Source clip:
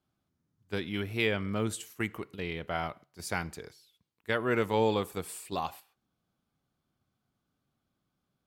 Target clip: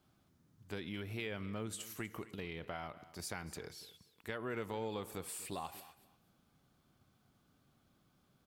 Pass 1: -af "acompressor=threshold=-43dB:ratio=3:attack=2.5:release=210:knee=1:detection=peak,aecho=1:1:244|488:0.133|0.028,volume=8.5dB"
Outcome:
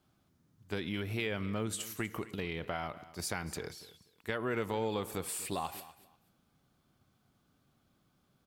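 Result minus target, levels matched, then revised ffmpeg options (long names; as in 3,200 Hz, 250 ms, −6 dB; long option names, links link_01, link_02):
downward compressor: peak gain reduction −6.5 dB
-af "acompressor=threshold=-52.5dB:ratio=3:attack=2.5:release=210:knee=1:detection=peak,aecho=1:1:244|488:0.133|0.028,volume=8.5dB"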